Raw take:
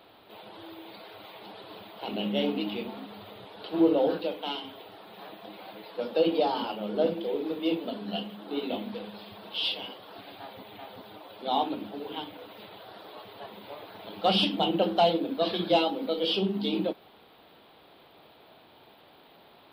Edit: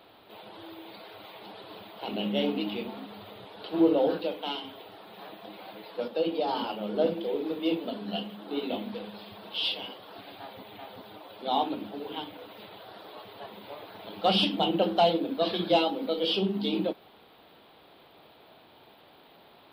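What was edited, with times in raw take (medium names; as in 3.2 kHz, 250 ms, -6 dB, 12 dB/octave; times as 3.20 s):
6.08–6.48 s: gain -4 dB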